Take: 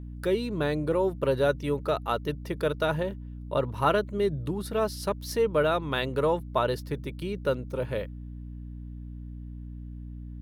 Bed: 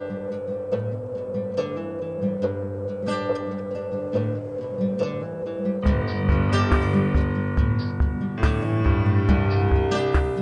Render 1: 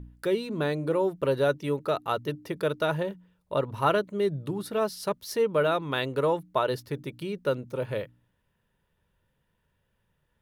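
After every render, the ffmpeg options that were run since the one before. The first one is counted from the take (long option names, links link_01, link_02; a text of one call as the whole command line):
ffmpeg -i in.wav -af "bandreject=frequency=60:width_type=h:width=4,bandreject=frequency=120:width_type=h:width=4,bandreject=frequency=180:width_type=h:width=4,bandreject=frequency=240:width_type=h:width=4,bandreject=frequency=300:width_type=h:width=4" out.wav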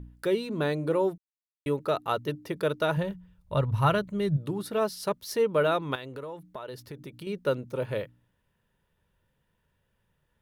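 ffmpeg -i in.wav -filter_complex "[0:a]asplit=3[link_01][link_02][link_03];[link_01]afade=type=out:start_time=2.96:duration=0.02[link_04];[link_02]asubboost=boost=10.5:cutoff=110,afade=type=in:start_time=2.96:duration=0.02,afade=type=out:start_time=4.36:duration=0.02[link_05];[link_03]afade=type=in:start_time=4.36:duration=0.02[link_06];[link_04][link_05][link_06]amix=inputs=3:normalize=0,asettb=1/sr,asplit=3[link_07][link_08][link_09];[link_07]atrim=end=5.954[link_10];[link_08]atrim=start=5.95:end=7.27,asetpts=PTS-STARTPTS,afade=type=in:duration=0.004:curve=qsin,afade=type=out:start_time=1.316:duration=0.004:curve=qsin,acompressor=threshold=-38dB:ratio=4:attack=3.2:release=140:knee=1:detection=peak[link_11];[link_09]atrim=start=7.266[link_12];[link_10][link_11]acrossfade=duration=0.004:curve1=hsin:curve2=qsin[link_13];[link_13][link_12]acrossfade=duration=0.004:curve1=qsin:curve2=hsin,asplit=3[link_14][link_15][link_16];[link_14]atrim=end=1.18,asetpts=PTS-STARTPTS,afade=type=out:start_time=1.176:duration=0.004:curve=hsin[link_17];[link_15]atrim=start=1.18:end=1.66,asetpts=PTS-STARTPTS,volume=0[link_18];[link_16]atrim=start=1.66,asetpts=PTS-STARTPTS,afade=type=in:duration=0.004:curve=hsin[link_19];[link_17][link_18][link_19]concat=n=3:v=0:a=1" out.wav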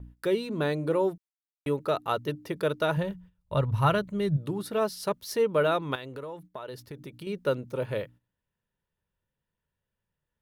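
ffmpeg -i in.wav -af "agate=range=-12dB:threshold=-49dB:ratio=16:detection=peak" out.wav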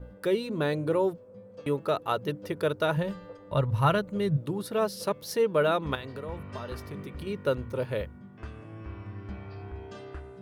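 ffmpeg -i in.wav -i bed.wav -filter_complex "[1:a]volume=-21dB[link_01];[0:a][link_01]amix=inputs=2:normalize=0" out.wav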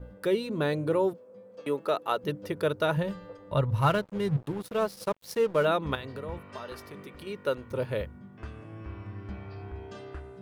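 ffmpeg -i in.wav -filter_complex "[0:a]asettb=1/sr,asplit=3[link_01][link_02][link_03];[link_01]atrim=end=1.134[link_04];[link_02]atrim=start=1.13:end=2.24,asetpts=PTS-STARTPTS,afade=type=in:duration=0.004:curve=qsin,afade=type=out:start_time=1.106:duration=0.004:curve=qsin,highpass=250[link_05];[link_03]atrim=start=2.236[link_06];[link_04][link_05]acrossfade=duration=0.004:curve1=hsin:curve2=qsin[link_07];[link_07][link_06]acrossfade=duration=0.004:curve1=qsin:curve2=hsin,asettb=1/sr,asplit=3[link_08][link_09][link_10];[link_08]atrim=end=3.804[link_11];[link_09]atrim=start=3.8:end=5.65,asetpts=PTS-STARTPTS,afade=type=in:duration=0.004:curve=qsin,afade=type=out:start_time=1.846:duration=0.004:curve=qsin,aeval=exprs='sgn(val(0))*max(abs(val(0))-0.00841,0)':channel_layout=same[link_12];[link_10]atrim=start=5.646[link_13];[link_11][link_12]acrossfade=duration=0.004:curve1=hsin:curve2=qsin[link_14];[link_14][link_13]acrossfade=duration=0.004:curve1=qsin:curve2=hsin,asettb=1/sr,asplit=3[link_15][link_16][link_17];[link_15]atrim=end=6.384[link_18];[link_16]atrim=start=6.38:end=7.71,asetpts=PTS-STARTPTS,afade=type=in:duration=0.004:curve=qsin,afade=type=out:start_time=1.326:duration=0.004:curve=qsin,equalizer=frequency=72:width=0.38:gain=-12.5[link_19];[link_17]atrim=start=7.706[link_20];[link_18][link_19]acrossfade=duration=0.004:curve1=hsin:curve2=qsin[link_21];[link_21][link_20]acrossfade=duration=0.004:curve1=qsin:curve2=hsin" out.wav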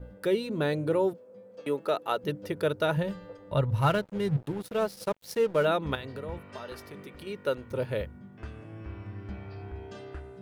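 ffmpeg -i in.wav -af "equalizer=frequency=1100:width=5.7:gain=-5" out.wav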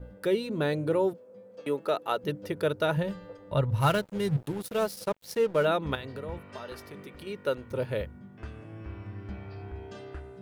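ffmpeg -i in.wav -filter_complex "[0:a]asettb=1/sr,asplit=3[link_01][link_02][link_03];[link_01]atrim=end=3.804[link_04];[link_02]atrim=start=3.8:end=5,asetpts=PTS-STARTPTS,afade=type=in:duration=0.004:curve=qsin,afade=type=out:start_time=1.196:duration=0.004:curve=qsin,highshelf=frequency=4700:gain=8.5[link_05];[link_03]atrim=start=4.996[link_06];[link_04][link_05]acrossfade=duration=0.004:curve1=hsin:curve2=qsin[link_07];[link_07][link_06]acrossfade=duration=0.004:curve1=qsin:curve2=hsin" out.wav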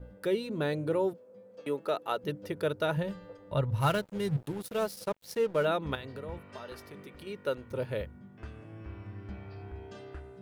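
ffmpeg -i in.wav -af "volume=-3dB" out.wav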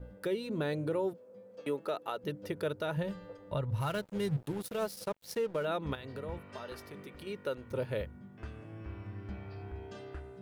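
ffmpeg -i in.wav -af "alimiter=level_in=0.5dB:limit=-24dB:level=0:latency=1:release=188,volume=-0.5dB" out.wav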